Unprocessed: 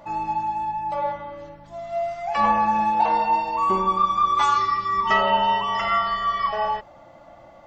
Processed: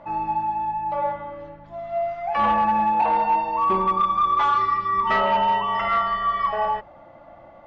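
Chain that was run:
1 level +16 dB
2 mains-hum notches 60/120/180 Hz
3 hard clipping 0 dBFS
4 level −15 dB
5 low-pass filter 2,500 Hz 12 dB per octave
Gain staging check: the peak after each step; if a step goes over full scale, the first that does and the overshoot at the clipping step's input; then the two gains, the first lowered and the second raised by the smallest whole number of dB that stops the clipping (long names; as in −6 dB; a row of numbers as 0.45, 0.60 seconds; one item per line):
+9.0, +9.0, 0.0, −15.0, −14.5 dBFS
step 1, 9.0 dB
step 1 +7 dB, step 4 −6 dB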